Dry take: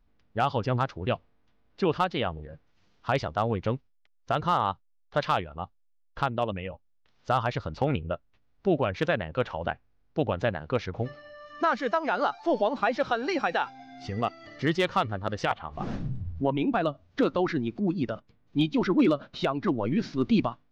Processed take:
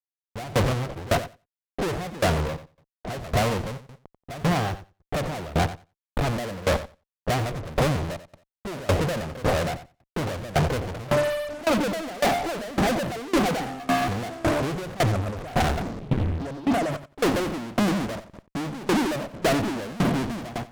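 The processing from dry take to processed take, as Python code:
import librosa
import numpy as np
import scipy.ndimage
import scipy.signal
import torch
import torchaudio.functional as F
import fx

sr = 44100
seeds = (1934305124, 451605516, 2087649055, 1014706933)

y = fx.leveller(x, sr, passes=5)
y = scipy.signal.sosfilt(scipy.signal.cheby1(6, 1.0, 740.0, 'lowpass', fs=sr, output='sos'), y)
y = fx.over_compress(y, sr, threshold_db=-27.0, ratio=-0.5, at=(15.03, 17.05))
y = fx.fuzz(y, sr, gain_db=45.0, gate_db=-52.0)
y = fx.echo_feedback(y, sr, ms=90, feedback_pct=18, wet_db=-10)
y = fx.tremolo_decay(y, sr, direction='decaying', hz=1.8, depth_db=21)
y = y * librosa.db_to_amplitude(-4.5)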